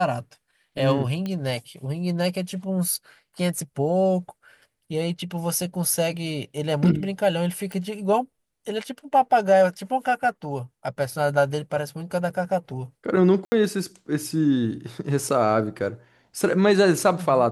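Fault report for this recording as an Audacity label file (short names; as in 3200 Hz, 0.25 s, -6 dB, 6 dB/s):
1.260000	1.260000	pop -18 dBFS
7.720000	7.720000	pop
12.300000	12.300000	gap 5 ms
13.450000	13.520000	gap 70 ms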